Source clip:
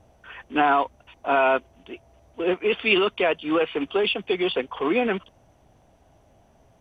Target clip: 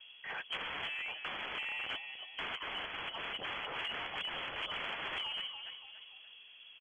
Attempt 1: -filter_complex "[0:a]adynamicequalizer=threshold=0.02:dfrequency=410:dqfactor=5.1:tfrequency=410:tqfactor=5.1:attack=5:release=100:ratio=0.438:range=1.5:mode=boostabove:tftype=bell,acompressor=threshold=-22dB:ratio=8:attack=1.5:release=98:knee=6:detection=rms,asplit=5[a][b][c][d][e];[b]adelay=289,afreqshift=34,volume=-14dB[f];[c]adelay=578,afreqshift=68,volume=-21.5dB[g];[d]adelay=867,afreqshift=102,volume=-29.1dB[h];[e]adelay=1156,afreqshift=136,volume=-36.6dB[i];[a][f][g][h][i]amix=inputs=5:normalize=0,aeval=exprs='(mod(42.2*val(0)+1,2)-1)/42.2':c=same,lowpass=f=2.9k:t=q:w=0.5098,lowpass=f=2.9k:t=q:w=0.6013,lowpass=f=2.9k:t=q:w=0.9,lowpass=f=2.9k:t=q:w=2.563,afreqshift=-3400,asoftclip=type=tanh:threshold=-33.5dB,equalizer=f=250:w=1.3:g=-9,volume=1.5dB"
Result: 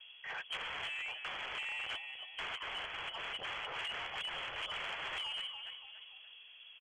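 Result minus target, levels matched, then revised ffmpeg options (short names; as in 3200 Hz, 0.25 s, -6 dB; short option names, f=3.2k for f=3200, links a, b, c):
soft clip: distortion +10 dB; 250 Hz band -6.0 dB
-filter_complex "[0:a]adynamicequalizer=threshold=0.02:dfrequency=410:dqfactor=5.1:tfrequency=410:tqfactor=5.1:attack=5:release=100:ratio=0.438:range=1.5:mode=boostabove:tftype=bell,acompressor=threshold=-22dB:ratio=8:attack=1.5:release=98:knee=6:detection=rms,asplit=5[a][b][c][d][e];[b]adelay=289,afreqshift=34,volume=-14dB[f];[c]adelay=578,afreqshift=68,volume=-21.5dB[g];[d]adelay=867,afreqshift=102,volume=-29.1dB[h];[e]adelay=1156,afreqshift=136,volume=-36.6dB[i];[a][f][g][h][i]amix=inputs=5:normalize=0,aeval=exprs='(mod(42.2*val(0)+1,2)-1)/42.2':c=same,lowpass=f=2.9k:t=q:w=0.5098,lowpass=f=2.9k:t=q:w=0.6013,lowpass=f=2.9k:t=q:w=0.9,lowpass=f=2.9k:t=q:w=2.563,afreqshift=-3400,asoftclip=type=tanh:threshold=-27dB,volume=1.5dB"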